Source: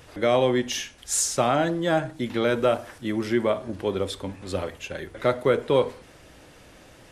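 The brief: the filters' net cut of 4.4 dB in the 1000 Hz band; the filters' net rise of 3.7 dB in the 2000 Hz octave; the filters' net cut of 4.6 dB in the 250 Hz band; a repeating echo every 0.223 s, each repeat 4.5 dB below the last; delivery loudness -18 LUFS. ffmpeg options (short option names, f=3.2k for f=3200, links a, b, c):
-af "equalizer=f=250:t=o:g=-6,equalizer=f=1k:t=o:g=-8.5,equalizer=f=2k:t=o:g=7.5,aecho=1:1:223|446|669|892|1115|1338|1561|1784|2007:0.596|0.357|0.214|0.129|0.0772|0.0463|0.0278|0.0167|0.01,volume=7.5dB"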